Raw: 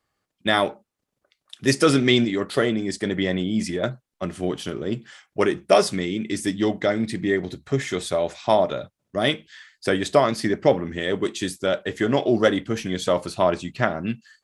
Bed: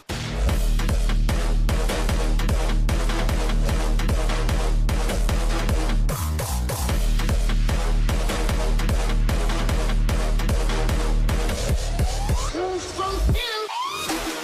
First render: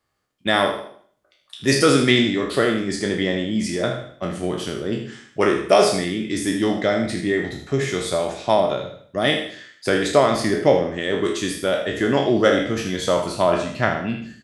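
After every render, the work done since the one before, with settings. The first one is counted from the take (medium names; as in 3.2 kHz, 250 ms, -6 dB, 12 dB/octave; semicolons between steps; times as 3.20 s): spectral sustain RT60 0.53 s; feedback delay 79 ms, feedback 30%, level -9.5 dB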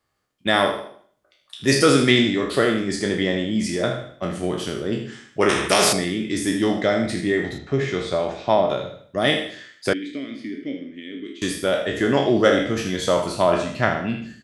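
5.49–5.93 s: spectrum-flattening compressor 2:1; 7.58–8.70 s: distance through air 130 m; 9.93–11.42 s: vowel filter i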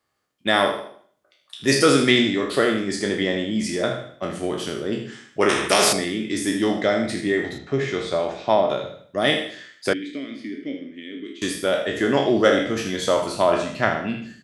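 bass shelf 77 Hz -11.5 dB; hum notches 60/120/180 Hz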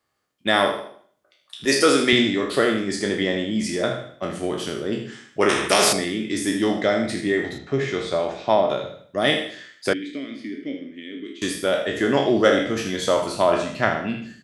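1.65–2.13 s: high-pass 250 Hz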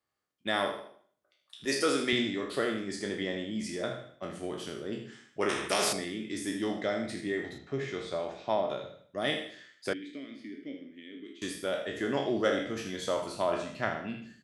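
trim -11 dB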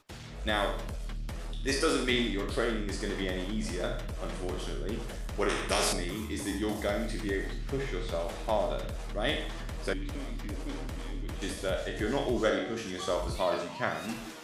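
add bed -16.5 dB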